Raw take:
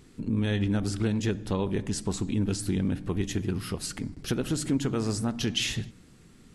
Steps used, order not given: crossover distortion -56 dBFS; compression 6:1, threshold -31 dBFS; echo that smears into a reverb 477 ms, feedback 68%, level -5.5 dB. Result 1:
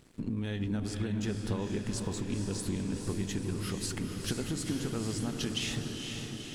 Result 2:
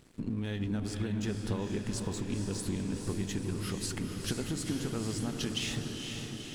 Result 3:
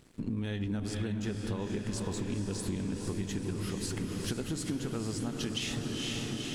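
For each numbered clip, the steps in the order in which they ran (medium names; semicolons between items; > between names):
crossover distortion > compression > echo that smears into a reverb; compression > crossover distortion > echo that smears into a reverb; crossover distortion > echo that smears into a reverb > compression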